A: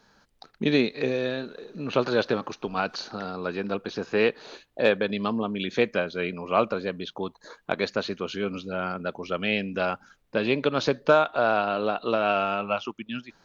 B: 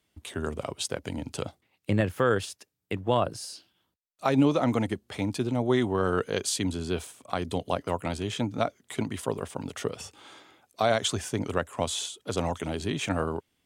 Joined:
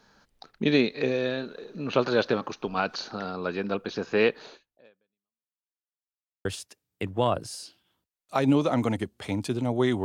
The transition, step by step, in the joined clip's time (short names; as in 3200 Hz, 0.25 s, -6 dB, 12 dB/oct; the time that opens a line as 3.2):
A
4.45–5.61 fade out exponential
5.61–6.45 mute
6.45 switch to B from 2.35 s